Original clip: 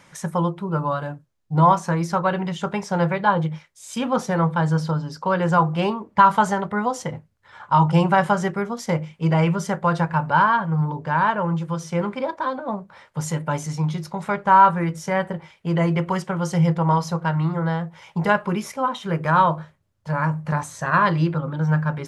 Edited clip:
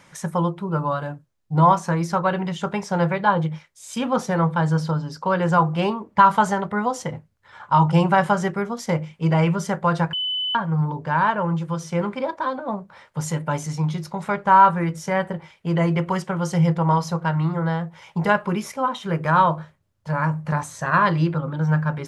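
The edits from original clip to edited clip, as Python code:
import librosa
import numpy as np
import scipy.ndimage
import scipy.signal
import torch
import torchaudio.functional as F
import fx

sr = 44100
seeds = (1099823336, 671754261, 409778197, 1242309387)

y = fx.edit(x, sr, fx.bleep(start_s=10.13, length_s=0.42, hz=3010.0, db=-22.0), tone=tone)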